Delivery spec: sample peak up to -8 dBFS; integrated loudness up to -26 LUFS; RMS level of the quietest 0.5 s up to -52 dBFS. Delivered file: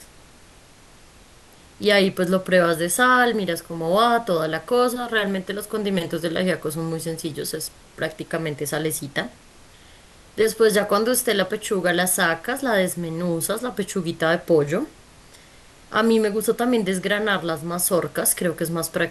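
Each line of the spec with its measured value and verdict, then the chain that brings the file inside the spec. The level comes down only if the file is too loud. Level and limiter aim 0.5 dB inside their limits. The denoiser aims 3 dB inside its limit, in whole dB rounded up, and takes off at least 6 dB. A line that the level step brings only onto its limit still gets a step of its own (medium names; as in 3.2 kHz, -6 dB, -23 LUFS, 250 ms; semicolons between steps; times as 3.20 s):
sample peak -5.0 dBFS: fail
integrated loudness -21.5 LUFS: fail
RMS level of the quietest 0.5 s -49 dBFS: fail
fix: trim -5 dB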